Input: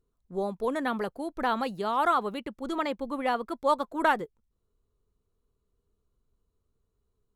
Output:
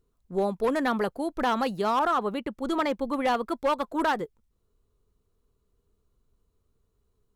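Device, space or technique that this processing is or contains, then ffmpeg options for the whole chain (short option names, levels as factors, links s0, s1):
limiter into clipper: -filter_complex "[0:a]alimiter=limit=0.126:level=0:latency=1:release=172,asoftclip=type=hard:threshold=0.0668,asettb=1/sr,asplit=3[s0][s1][s2];[s0]atrim=end=1.994[s3];[s1]atrim=start=1.99:end=2.91,asetpts=PTS-STARTPTS,afade=t=in:d=0.004:c=qsin,afade=t=out:st=0.916:d=0.004:c=qsin,adynamicequalizer=threshold=0.00562:dfrequency=2200:dqfactor=0.7:tfrequency=2200:tqfactor=0.7:attack=5:release=100:ratio=0.375:range=2.5:mode=cutabove:tftype=highshelf[s4];[s2]atrim=start=2.906[s5];[s3][s4]acrossfade=d=0.004:c1=hsin:c2=qsin[s6];[s6][s5]acrossfade=d=0.004:c1=qsin:c2=hsin,volume=1.68"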